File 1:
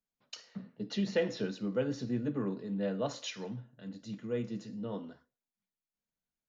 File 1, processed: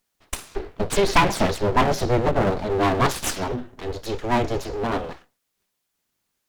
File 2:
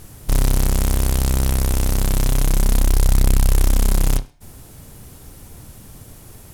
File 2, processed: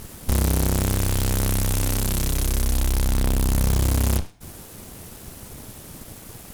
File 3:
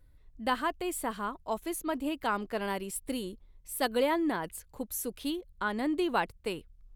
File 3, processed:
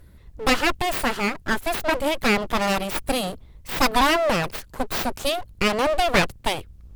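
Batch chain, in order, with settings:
full-wave rectifier; valve stage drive 7 dB, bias 0.75; normalise loudness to -23 LUFS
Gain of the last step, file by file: +24.0 dB, +9.5 dB, +20.0 dB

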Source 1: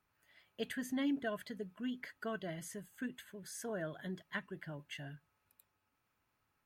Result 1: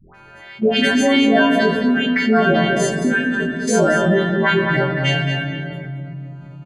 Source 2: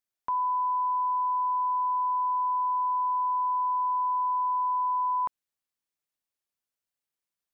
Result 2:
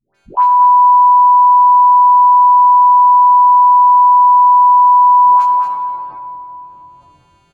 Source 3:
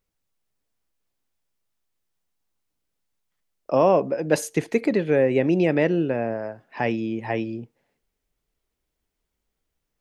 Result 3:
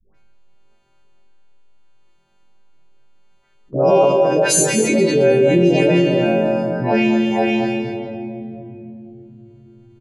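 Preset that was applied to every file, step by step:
partials quantised in pitch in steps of 2 st; level-controlled noise filter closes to 1.8 kHz, open at -23.5 dBFS; dynamic bell 1.8 kHz, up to -6 dB, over -44 dBFS, Q 2.9; phase dispersion highs, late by 147 ms, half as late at 640 Hz; gate -48 dBFS, range -19 dB; doubling 23 ms -4 dB; echo from a far wall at 38 m, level -8 dB; simulated room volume 2400 m³, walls mixed, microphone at 1.1 m; level flattener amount 50%; peak normalisation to -3 dBFS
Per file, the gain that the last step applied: +21.5 dB, +14.5 dB, -0.5 dB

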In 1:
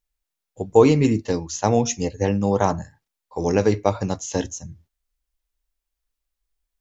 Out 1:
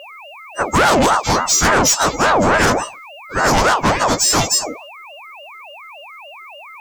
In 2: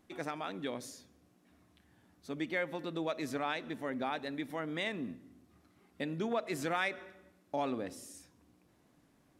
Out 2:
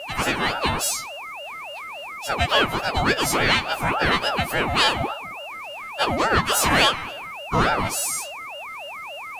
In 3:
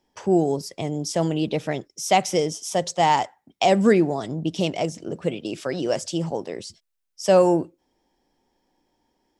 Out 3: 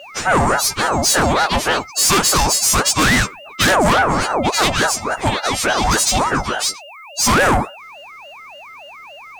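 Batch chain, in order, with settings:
partials quantised in pitch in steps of 2 st; valve stage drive 25 dB, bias 0.25; whistle 1.7 kHz -48 dBFS; ring modulator with a swept carrier 760 Hz, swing 50%, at 3.5 Hz; peak normalisation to -6 dBFS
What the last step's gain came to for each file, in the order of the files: +17.0 dB, +19.0 dB, +16.0 dB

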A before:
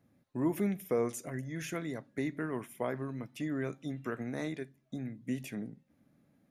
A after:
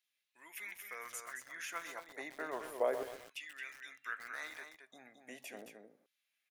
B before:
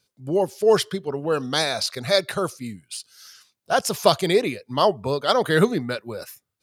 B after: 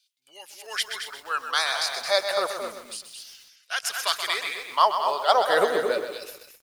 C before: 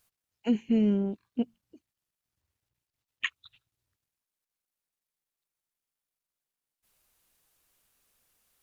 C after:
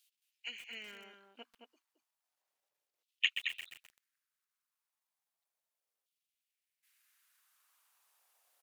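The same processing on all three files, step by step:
delay 220 ms -8.5 dB; LFO high-pass saw down 0.33 Hz 470–3200 Hz; bit-crushed delay 128 ms, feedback 55%, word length 7-bit, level -8.5 dB; trim -3 dB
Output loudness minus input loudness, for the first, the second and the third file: -6.5 LU, -3.0 LU, -8.0 LU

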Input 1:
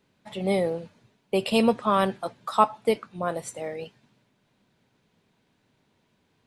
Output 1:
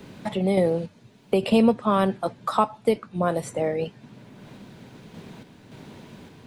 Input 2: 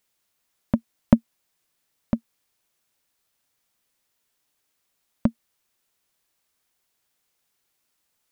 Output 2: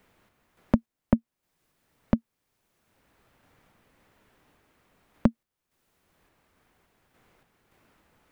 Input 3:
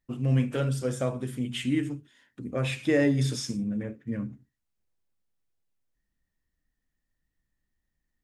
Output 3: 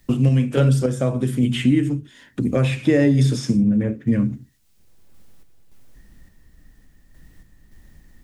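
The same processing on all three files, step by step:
random-step tremolo; bass shelf 470 Hz +8 dB; three bands compressed up and down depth 70%; peak normalisation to -6 dBFS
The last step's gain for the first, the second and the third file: +0.5 dB, -3.0 dB, +7.0 dB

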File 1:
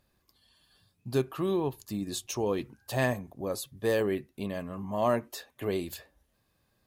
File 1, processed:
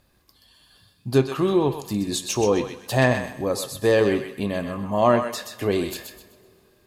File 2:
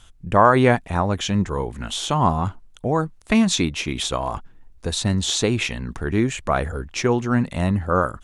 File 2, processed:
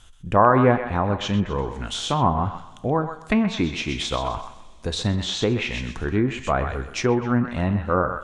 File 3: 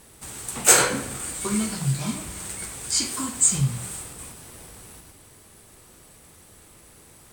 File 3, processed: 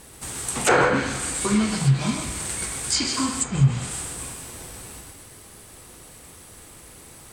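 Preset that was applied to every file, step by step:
thinning echo 127 ms, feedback 32%, high-pass 890 Hz, level -6 dB; two-slope reverb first 0.45 s, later 3.1 s, from -19 dB, DRR 11.5 dB; low-pass that closes with the level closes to 1.6 kHz, closed at -14.5 dBFS; normalise loudness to -23 LUFS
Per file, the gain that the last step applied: +8.5 dB, -1.5 dB, +4.5 dB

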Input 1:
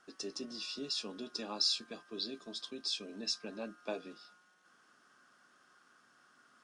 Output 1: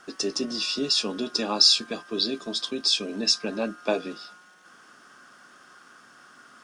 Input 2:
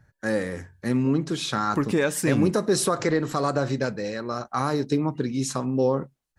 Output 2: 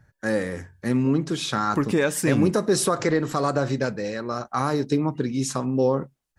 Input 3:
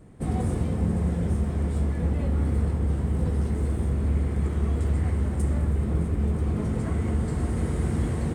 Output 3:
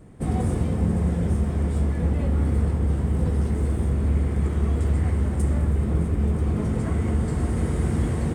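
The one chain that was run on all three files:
band-stop 4.1 kHz, Q 28; normalise loudness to -24 LUFS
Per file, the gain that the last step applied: +14.0 dB, +1.0 dB, +2.5 dB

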